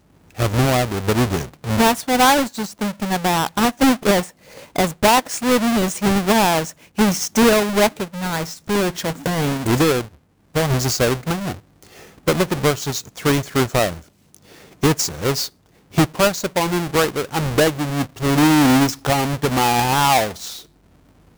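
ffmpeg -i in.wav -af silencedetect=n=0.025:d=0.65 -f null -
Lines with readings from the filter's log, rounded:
silence_start: 20.61
silence_end: 21.37 | silence_duration: 0.77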